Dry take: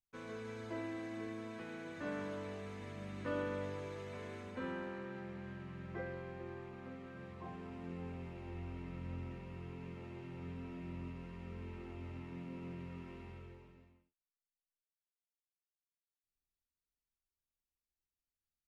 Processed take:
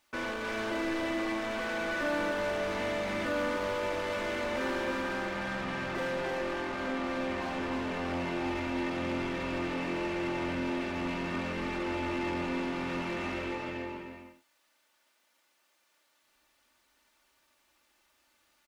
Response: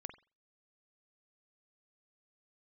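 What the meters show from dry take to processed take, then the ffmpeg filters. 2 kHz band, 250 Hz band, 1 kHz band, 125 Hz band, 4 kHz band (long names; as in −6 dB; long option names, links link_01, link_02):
+17.0 dB, +11.5 dB, +16.0 dB, +3.5 dB, +19.0 dB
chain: -filter_complex "[0:a]asplit=2[link_01][link_02];[link_02]highpass=frequency=720:poles=1,volume=38dB,asoftclip=type=tanh:threshold=-27.5dB[link_03];[link_01][link_03]amix=inputs=2:normalize=0,lowpass=frequency=1900:poles=1,volume=-6dB,aecho=1:1:3.4:0.54,aecho=1:1:305:0.596"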